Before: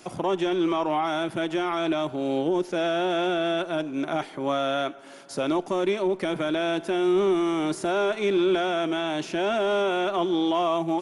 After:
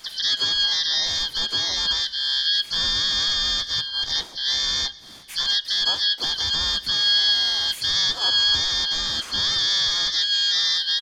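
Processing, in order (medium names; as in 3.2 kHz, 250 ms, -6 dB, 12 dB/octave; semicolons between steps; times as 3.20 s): four frequency bands reordered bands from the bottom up 2413; harmony voices -12 st -12 dB, +5 st -3 dB, +7 st -9 dB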